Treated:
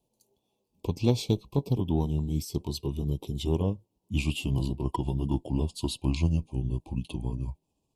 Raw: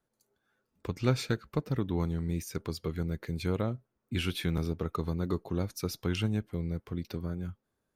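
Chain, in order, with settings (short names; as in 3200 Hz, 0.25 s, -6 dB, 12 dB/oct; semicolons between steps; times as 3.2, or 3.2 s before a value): gliding pitch shift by -6 st starting unshifted; elliptic band-stop 970–2600 Hz, stop band 50 dB; added harmonics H 4 -29 dB, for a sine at -16 dBFS; gain +6 dB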